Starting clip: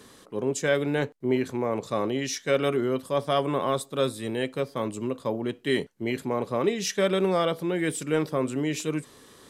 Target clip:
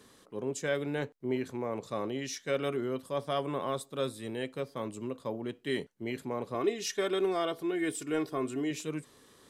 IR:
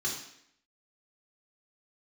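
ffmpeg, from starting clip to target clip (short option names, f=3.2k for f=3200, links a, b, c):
-filter_complex "[0:a]asettb=1/sr,asplit=3[a][b][c];[a]atrim=end=6.544[d];[b]atrim=start=6.54:end=8.71,asetpts=PTS-STARTPTS,afade=t=in:d=0.004:c=qsin,afade=t=out:st=2.166:d=0.004:c=qsin,aecho=1:1:2.8:0.66,atrim=end_sample=95697[e];[c]atrim=start=8.706[f];[d][e]acrossfade=d=0.004:c1=hsin:c2=qsin[g];[g][f]acrossfade=d=0.004:c1=qsin:c2=hsin,volume=-7.5dB"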